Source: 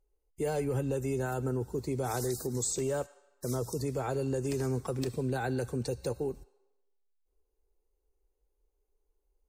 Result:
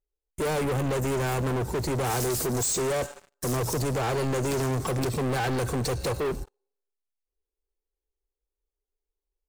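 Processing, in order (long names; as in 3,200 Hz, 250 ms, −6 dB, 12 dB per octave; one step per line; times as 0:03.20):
leveller curve on the samples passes 5
level −1.5 dB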